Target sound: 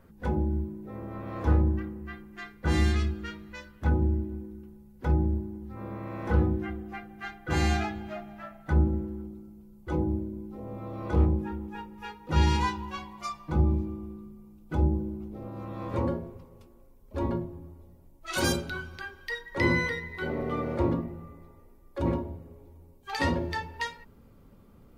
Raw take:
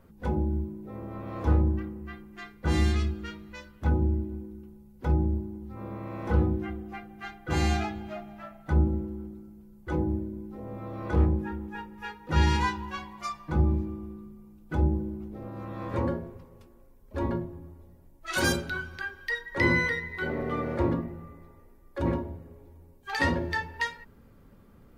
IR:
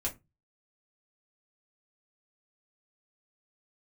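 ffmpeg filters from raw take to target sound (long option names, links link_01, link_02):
-af "asetnsamples=nb_out_samples=441:pad=0,asendcmd='9.22 equalizer g -6.5',equalizer=frequency=1700:width=3.3:gain=3.5"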